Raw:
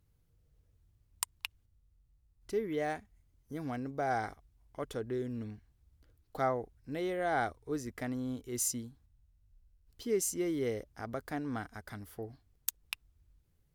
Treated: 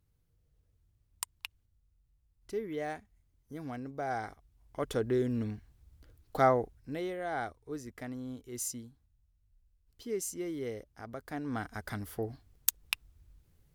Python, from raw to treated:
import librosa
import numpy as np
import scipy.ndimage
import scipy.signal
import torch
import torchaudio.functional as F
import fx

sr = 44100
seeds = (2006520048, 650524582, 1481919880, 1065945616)

y = fx.gain(x, sr, db=fx.line((4.29, -2.5), (4.97, 6.5), (6.61, 6.5), (7.2, -4.0), (11.19, -4.0), (11.84, 6.5)))